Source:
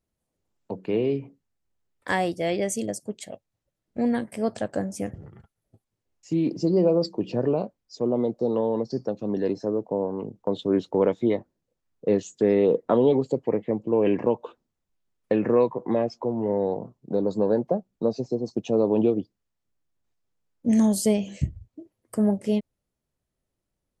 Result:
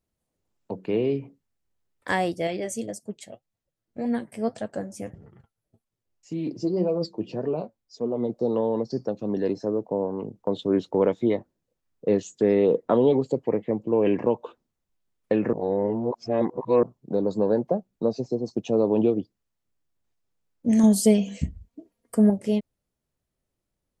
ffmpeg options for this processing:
ffmpeg -i in.wav -filter_complex "[0:a]asettb=1/sr,asplit=3[link_01][link_02][link_03];[link_01]atrim=end=2.474[link_04];[link_02]atrim=start=2.47:end=8.3,asetpts=PTS-STARTPTS,afade=type=in:duration=0.004:curve=qsin,afade=type=out:start_time=5.826:duration=0.004:curve=qsin,flanger=delay=4.3:depth=4.8:regen=48:speed=1.8:shape=sinusoidal[link_05];[link_03]atrim=start=8.296[link_06];[link_04][link_05]acrossfade=duration=0.004:curve1=hsin:curve2=qsin[link_07];[link_07][link_06]acrossfade=duration=0.004:curve1=qsin:curve2=hsin,asettb=1/sr,asplit=3[link_08][link_09][link_10];[link_08]atrim=end=20.834[link_11];[link_09]atrim=start=20.83:end=22.3,asetpts=PTS-STARTPTS,afade=type=in:duration=0.004:curve=qsin,afade=type=out:start_time=1.466:duration=0.004:curve=qsin,aecho=1:1:4.3:0.71,atrim=end_sample=64827[link_12];[link_10]atrim=start=22.296[link_13];[link_11][link_12]acrossfade=duration=0.004:curve1=hsin:curve2=qsin[link_14];[link_14][link_13]acrossfade=duration=0.004:curve1=qsin:curve2=hsin,asplit=3[link_15][link_16][link_17];[link_15]atrim=end=15.532[link_18];[link_16]atrim=start=15.528:end=16.832,asetpts=PTS-STARTPTS,areverse[link_19];[link_17]atrim=start=16.828[link_20];[link_18][link_19]acrossfade=duration=0.004:curve1=hsin:curve2=hsin[link_21];[link_21][link_20]acrossfade=duration=0.004:curve1=hsin:curve2=hsin" out.wav

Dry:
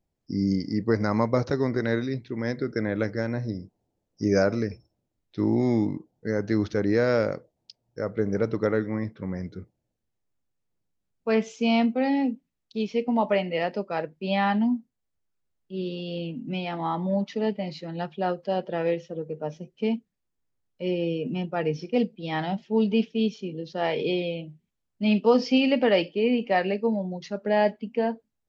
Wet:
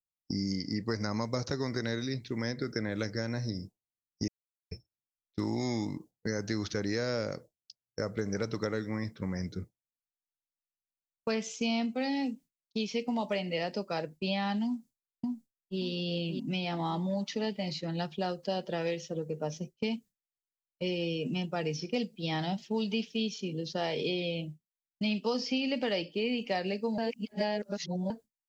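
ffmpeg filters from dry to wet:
ffmpeg -i in.wav -filter_complex "[0:a]asplit=2[link_01][link_02];[link_02]afade=type=in:start_time=14.65:duration=0.01,afade=type=out:start_time=15.81:duration=0.01,aecho=0:1:580|1160|1740|2320:0.501187|0.150356|0.0451069|0.0135321[link_03];[link_01][link_03]amix=inputs=2:normalize=0,asplit=5[link_04][link_05][link_06][link_07][link_08];[link_04]atrim=end=4.28,asetpts=PTS-STARTPTS,afade=type=out:start_time=4.276:duration=0.004:curve=hsin[link_09];[link_05]atrim=start=4.28:end=4.71,asetpts=PTS-STARTPTS,volume=0[link_10];[link_06]atrim=start=4.71:end=26.982,asetpts=PTS-STARTPTS,afade=type=in:duration=0.004:curve=hsin[link_11];[link_07]atrim=start=26.978:end=28.102,asetpts=PTS-STARTPTS,areverse[link_12];[link_08]atrim=start=28.098[link_13];[link_09][link_10][link_11]concat=n=3:v=0:a=1[link_14];[link_14][link_12]acrossfade=duration=0.004:curve1=hsin:curve2=hsin[link_15];[link_15][link_13]acrossfade=duration=0.004:curve1=hsin:curve2=hsin,agate=range=-33dB:threshold=-38dB:ratio=3:detection=peak,bass=frequency=250:gain=4,treble=frequency=4000:gain=15,acrossover=split=790|3200[link_16][link_17][link_18];[link_16]acompressor=threshold=-32dB:ratio=4[link_19];[link_17]acompressor=threshold=-40dB:ratio=4[link_20];[link_18]acompressor=threshold=-42dB:ratio=4[link_21];[link_19][link_20][link_21]amix=inputs=3:normalize=0" out.wav

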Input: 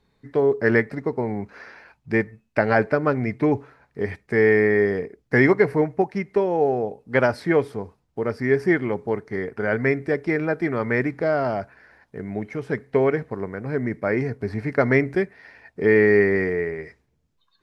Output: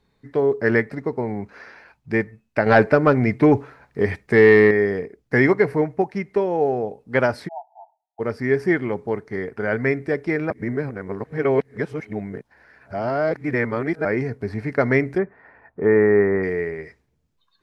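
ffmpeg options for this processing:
ffmpeg -i in.wav -filter_complex "[0:a]asettb=1/sr,asplit=3[link_01][link_02][link_03];[link_01]atrim=end=2.664[link_04];[link_02]atrim=start=2.66:end=4.71,asetpts=PTS-STARTPTS,afade=type=in:duration=0.004:curve=qsin,afade=type=out:start_time=2.046:duration=0.004:curve=qsin,acontrast=47[link_05];[link_03]atrim=start=4.706[link_06];[link_04][link_05]acrossfade=duration=0.004:curve1=hsin:curve2=qsin[link_07];[link_07][link_06]acrossfade=duration=0.004:curve1=qsin:curve2=hsin,asplit=3[link_08][link_09][link_10];[link_08]afade=type=out:start_time=7.47:duration=0.02[link_11];[link_09]asuperpass=centerf=770:order=20:qfactor=2.5,afade=type=in:start_time=7.47:duration=0.02,afade=type=out:start_time=8.19:duration=0.02[link_12];[link_10]afade=type=in:start_time=8.19:duration=0.02[link_13];[link_11][link_12][link_13]amix=inputs=3:normalize=0,asplit=3[link_14][link_15][link_16];[link_14]afade=type=out:start_time=15.17:duration=0.02[link_17];[link_15]lowpass=frequency=1200:width_type=q:width=1.6,afade=type=in:start_time=15.17:duration=0.02,afade=type=out:start_time=16.42:duration=0.02[link_18];[link_16]afade=type=in:start_time=16.42:duration=0.02[link_19];[link_17][link_18][link_19]amix=inputs=3:normalize=0,asplit=3[link_20][link_21][link_22];[link_20]atrim=end=10.502[link_23];[link_21]atrim=start=10.498:end=14.052,asetpts=PTS-STARTPTS,areverse[link_24];[link_22]atrim=start=14.048[link_25];[link_23][link_24]acrossfade=duration=0.004:curve1=hsin:curve2=hsin[link_26];[link_26][link_25]acrossfade=duration=0.004:curve1=hsin:curve2=hsin" out.wav

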